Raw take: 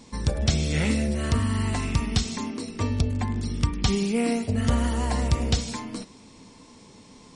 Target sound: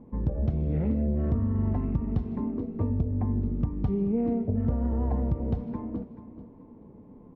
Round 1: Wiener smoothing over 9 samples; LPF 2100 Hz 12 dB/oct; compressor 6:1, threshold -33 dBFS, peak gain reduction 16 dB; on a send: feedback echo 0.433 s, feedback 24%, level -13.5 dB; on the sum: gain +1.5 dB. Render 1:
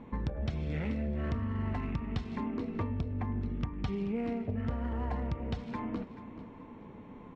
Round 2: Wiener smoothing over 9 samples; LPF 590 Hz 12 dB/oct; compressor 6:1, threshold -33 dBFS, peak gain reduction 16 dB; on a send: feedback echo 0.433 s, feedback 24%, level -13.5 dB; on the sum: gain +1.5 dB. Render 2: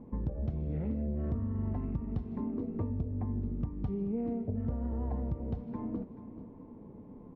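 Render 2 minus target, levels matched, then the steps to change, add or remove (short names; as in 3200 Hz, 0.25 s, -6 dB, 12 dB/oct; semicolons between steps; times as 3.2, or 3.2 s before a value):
compressor: peak gain reduction +7.5 dB
change: compressor 6:1, threshold -24 dBFS, peak gain reduction 8.5 dB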